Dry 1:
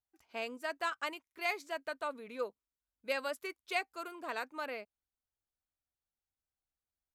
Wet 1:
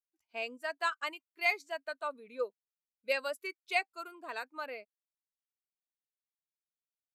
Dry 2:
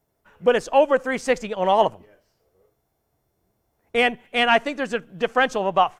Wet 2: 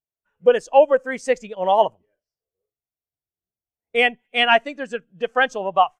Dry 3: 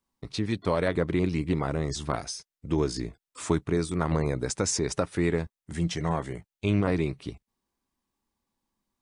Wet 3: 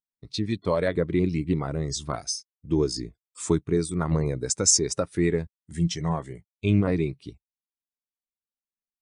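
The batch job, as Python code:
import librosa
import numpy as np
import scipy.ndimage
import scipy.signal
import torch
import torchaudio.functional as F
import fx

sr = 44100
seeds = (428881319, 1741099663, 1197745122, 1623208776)

y = fx.high_shelf(x, sr, hz=2800.0, db=11.5)
y = fx.spectral_expand(y, sr, expansion=1.5)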